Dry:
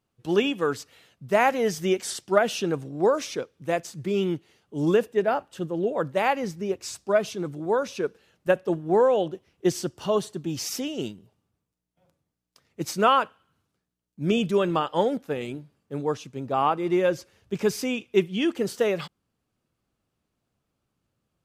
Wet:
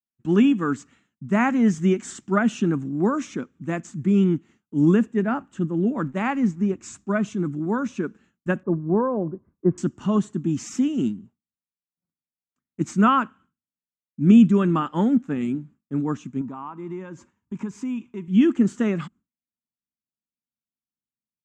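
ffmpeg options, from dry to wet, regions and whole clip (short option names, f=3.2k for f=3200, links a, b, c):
-filter_complex "[0:a]asettb=1/sr,asplit=3[a][b][c];[a]atrim=end=5.984[d];[b]atrim=start=5.98:end=6.66,asetpts=PTS-STARTPTS,afade=t=in:d=0.004:c=qsin,afade=t=out:st=0.676:d=0.004:c=qsin,lowpass=11k,aeval=exprs='sgn(val(0))*max(abs(val(0))-0.00316,0)':c=same[e];[c]atrim=start=6.656[f];[d][e]acrossfade=d=0.004:c1=hsin:c2=qsin[g];[g][f]acrossfade=d=0.004:c1=qsin:c2=hsin,asettb=1/sr,asplit=3[h][i][j];[h]atrim=end=8.634[k];[i]atrim=start=8.63:end=9.78,asetpts=PTS-STARTPTS,afade=t=in:d=0.004:c=qsin,afade=t=out:st=1.146:d=0.004:c=qsin,lowpass=f=1.2k:w=0.5412,lowpass=f=1.2k:w=1.3066,aecho=1:1:1.9:0.43,atrim=end_sample=50715[l];[j]atrim=start=9.776[m];[k][l]acrossfade=d=0.004:c1=hsin:c2=qsin[n];[n][m]acrossfade=d=0.004:c1=qsin:c2=hsin,asettb=1/sr,asplit=3[o][p][q];[o]atrim=end=16.414[r];[p]atrim=start=16.41:end=18.28,asetpts=PTS-STARTPTS,afade=t=in:d=0.004:c=qsin,afade=t=out:st=1.866:d=0.004:c=qsin,highpass=52,equalizer=f=960:t=o:w=0.28:g=14,acompressor=threshold=-40dB:ratio=2.5:attack=3.2:release=140:knee=1:detection=peak[s];[q]atrim=start=18.276[t];[r][s]acrossfade=d=0.004:c1=hsin:c2=qsin[u];[u][t]acrossfade=d=0.004:c1=qsin:c2=hsin,highshelf=f=4.6k:g=-5.5,agate=range=-33dB:threshold=-48dB:ratio=3:detection=peak,firequalizer=gain_entry='entry(120,0);entry(230,12);entry(480,-13);entry(1200,0);entry(4700,-15);entry(7200,3);entry(11000,-26)':delay=0.05:min_phase=1,volume=3dB"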